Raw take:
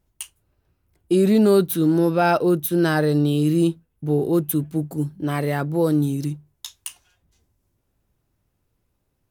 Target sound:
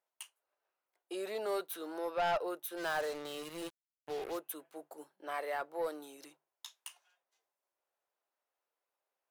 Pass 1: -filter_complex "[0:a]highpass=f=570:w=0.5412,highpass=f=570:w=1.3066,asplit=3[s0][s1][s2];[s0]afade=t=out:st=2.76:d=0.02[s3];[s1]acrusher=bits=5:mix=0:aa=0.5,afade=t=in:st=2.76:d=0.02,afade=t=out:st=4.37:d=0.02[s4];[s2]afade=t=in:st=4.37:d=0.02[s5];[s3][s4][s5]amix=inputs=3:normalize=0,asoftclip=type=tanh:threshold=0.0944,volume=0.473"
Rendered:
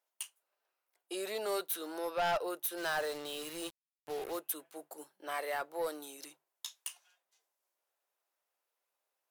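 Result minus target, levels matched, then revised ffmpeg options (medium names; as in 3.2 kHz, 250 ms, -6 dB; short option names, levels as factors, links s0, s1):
8 kHz band +6.0 dB
-filter_complex "[0:a]highpass=f=570:w=0.5412,highpass=f=570:w=1.3066,highshelf=f=2900:g=-9.5,asplit=3[s0][s1][s2];[s0]afade=t=out:st=2.76:d=0.02[s3];[s1]acrusher=bits=5:mix=0:aa=0.5,afade=t=in:st=2.76:d=0.02,afade=t=out:st=4.37:d=0.02[s4];[s2]afade=t=in:st=4.37:d=0.02[s5];[s3][s4][s5]amix=inputs=3:normalize=0,asoftclip=type=tanh:threshold=0.0944,volume=0.473"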